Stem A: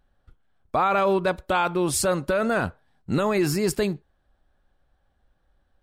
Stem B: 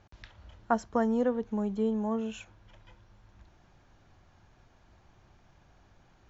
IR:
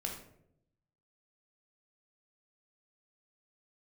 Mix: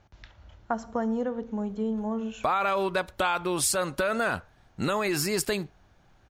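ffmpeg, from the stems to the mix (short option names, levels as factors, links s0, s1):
-filter_complex "[0:a]tiltshelf=f=640:g=-5,adelay=1700,volume=1[s0];[1:a]volume=0.841,asplit=2[s1][s2];[s2]volume=0.266[s3];[2:a]atrim=start_sample=2205[s4];[s3][s4]afir=irnorm=-1:irlink=0[s5];[s0][s1][s5]amix=inputs=3:normalize=0,acompressor=threshold=0.0631:ratio=3"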